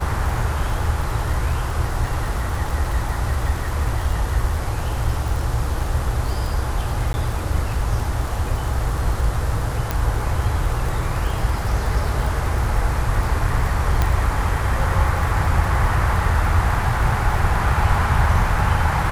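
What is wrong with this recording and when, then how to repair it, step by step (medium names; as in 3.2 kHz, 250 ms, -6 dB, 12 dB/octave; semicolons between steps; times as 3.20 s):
crackle 49 per s -26 dBFS
7.13–7.14 s: dropout 10 ms
9.91 s: pop
14.02 s: pop -6 dBFS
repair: de-click; interpolate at 7.13 s, 10 ms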